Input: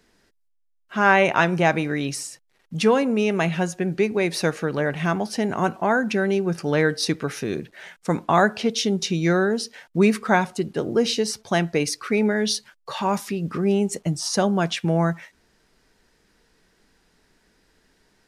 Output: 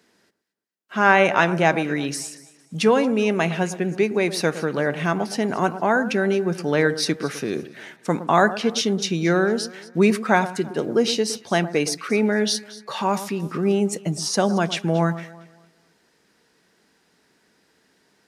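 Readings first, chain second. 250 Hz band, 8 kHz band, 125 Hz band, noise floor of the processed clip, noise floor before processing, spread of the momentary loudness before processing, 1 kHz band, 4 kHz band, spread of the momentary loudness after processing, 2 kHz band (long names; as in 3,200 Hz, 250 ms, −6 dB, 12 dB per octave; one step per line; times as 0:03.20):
+0.5 dB, +1.0 dB, −0.5 dB, −64 dBFS, −66 dBFS, 9 LU, +1.0 dB, +1.0 dB, 9 LU, +1.0 dB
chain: high-pass filter 150 Hz
on a send: delay that swaps between a low-pass and a high-pass 114 ms, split 1,500 Hz, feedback 54%, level −13 dB
on the sum: level +1 dB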